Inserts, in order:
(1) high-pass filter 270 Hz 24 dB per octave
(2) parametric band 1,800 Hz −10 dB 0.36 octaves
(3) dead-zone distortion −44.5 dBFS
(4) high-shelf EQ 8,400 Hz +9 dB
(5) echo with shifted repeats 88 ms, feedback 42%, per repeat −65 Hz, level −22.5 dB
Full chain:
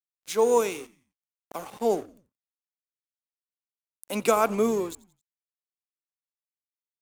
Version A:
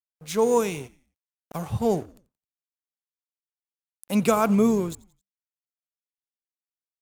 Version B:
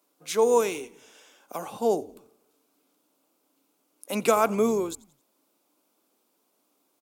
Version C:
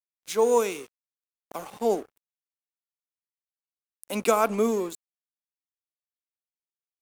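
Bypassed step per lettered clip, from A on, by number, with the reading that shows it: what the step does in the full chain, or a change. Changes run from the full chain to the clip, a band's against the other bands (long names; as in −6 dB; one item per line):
1, 125 Hz band +13.0 dB
3, distortion level −23 dB
5, echo-to-direct ratio −21.5 dB to none audible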